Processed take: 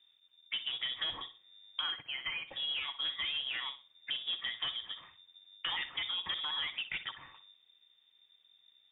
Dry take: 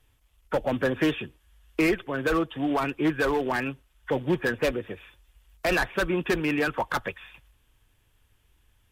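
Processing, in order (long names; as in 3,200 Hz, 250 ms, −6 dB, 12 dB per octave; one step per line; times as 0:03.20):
0:01.81–0:02.47: high-pass filter 270 Hz → 700 Hz 24 dB per octave
low-pass that shuts in the quiet parts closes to 1,600 Hz, open at −20.5 dBFS
downward compressor 3 to 1, threshold −32 dBFS, peak gain reduction 9.5 dB
flutter between parallel walls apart 10.5 metres, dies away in 0.29 s
voice inversion scrambler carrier 3,600 Hz
level −4.5 dB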